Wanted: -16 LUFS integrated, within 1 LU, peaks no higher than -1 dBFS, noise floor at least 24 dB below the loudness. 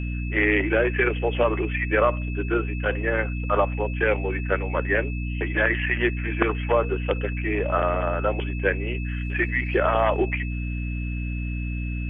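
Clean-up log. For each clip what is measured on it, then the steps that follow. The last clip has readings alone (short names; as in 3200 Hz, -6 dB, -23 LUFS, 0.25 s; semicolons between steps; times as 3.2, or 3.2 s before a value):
hum 60 Hz; harmonics up to 300 Hz; hum level -26 dBFS; steady tone 2600 Hz; tone level -38 dBFS; loudness -24.5 LUFS; peak -6.5 dBFS; loudness target -16.0 LUFS
-> de-hum 60 Hz, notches 5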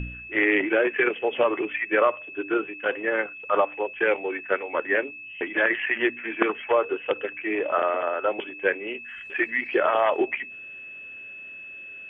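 hum none; steady tone 2600 Hz; tone level -38 dBFS
-> notch 2600 Hz, Q 30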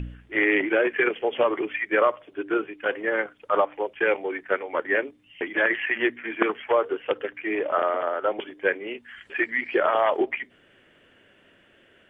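steady tone none; loudness -25.0 LUFS; peak -7.0 dBFS; loudness target -16.0 LUFS
-> gain +9 dB; limiter -1 dBFS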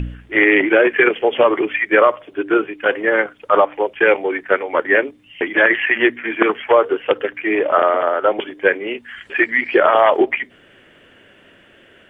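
loudness -16.5 LUFS; peak -1.0 dBFS; noise floor -50 dBFS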